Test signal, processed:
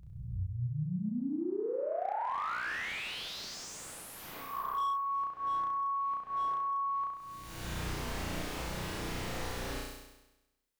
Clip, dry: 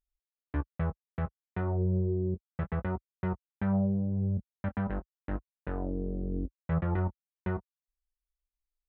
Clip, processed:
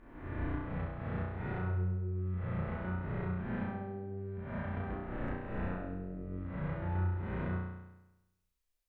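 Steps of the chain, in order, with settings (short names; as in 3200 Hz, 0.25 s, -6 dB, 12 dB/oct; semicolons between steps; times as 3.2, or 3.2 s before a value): spectral swells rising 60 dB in 1.17 s; compressor 8:1, threshold -37 dBFS; flutter echo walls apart 5.7 m, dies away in 1 s; slew limiter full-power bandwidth 35 Hz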